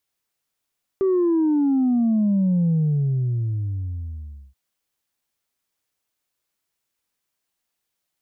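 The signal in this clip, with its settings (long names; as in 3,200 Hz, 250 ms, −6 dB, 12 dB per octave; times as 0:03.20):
bass drop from 390 Hz, over 3.53 s, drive 0.5 dB, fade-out 1.85 s, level −16.5 dB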